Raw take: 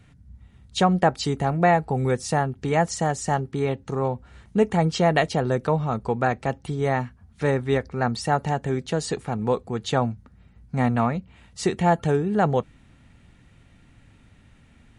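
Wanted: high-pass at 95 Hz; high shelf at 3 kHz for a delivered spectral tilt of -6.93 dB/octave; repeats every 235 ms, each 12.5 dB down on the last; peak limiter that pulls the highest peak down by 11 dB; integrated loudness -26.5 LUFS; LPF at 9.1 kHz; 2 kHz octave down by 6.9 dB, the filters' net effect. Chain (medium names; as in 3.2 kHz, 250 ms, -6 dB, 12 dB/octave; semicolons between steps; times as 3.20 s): high-pass 95 Hz; low-pass 9.1 kHz; peaking EQ 2 kHz -6 dB; treble shelf 3 kHz -7.5 dB; peak limiter -18.5 dBFS; feedback delay 235 ms, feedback 24%, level -12.5 dB; trim +3 dB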